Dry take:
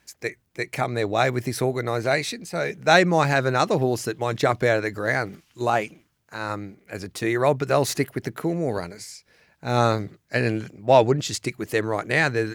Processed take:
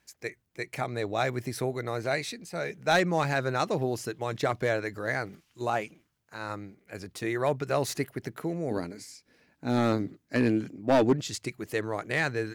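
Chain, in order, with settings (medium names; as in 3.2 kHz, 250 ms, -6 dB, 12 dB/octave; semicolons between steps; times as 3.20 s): 8.71–11.13 s: peaking EQ 270 Hz +14 dB 0.74 oct; overload inside the chain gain 9 dB; trim -7 dB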